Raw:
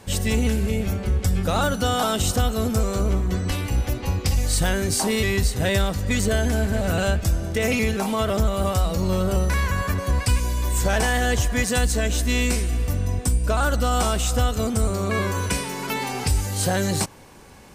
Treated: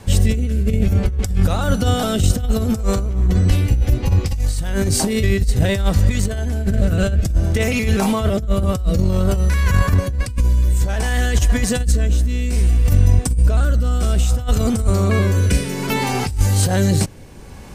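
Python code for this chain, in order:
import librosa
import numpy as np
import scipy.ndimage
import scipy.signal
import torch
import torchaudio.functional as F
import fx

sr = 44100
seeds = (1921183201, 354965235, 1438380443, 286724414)

y = fx.rotary(x, sr, hz=0.6)
y = fx.over_compress(y, sr, threshold_db=-25.0, ratio=-0.5)
y = fx.low_shelf(y, sr, hz=140.0, db=10.5)
y = F.gain(torch.from_numpy(y), 4.0).numpy()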